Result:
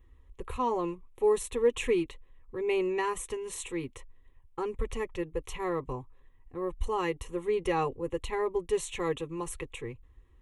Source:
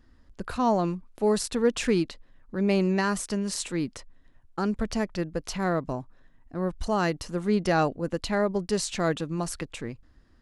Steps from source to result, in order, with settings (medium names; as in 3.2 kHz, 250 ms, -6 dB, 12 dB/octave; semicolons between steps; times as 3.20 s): bass shelf 71 Hz +7.5 dB; static phaser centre 1 kHz, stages 8; comb of notches 300 Hz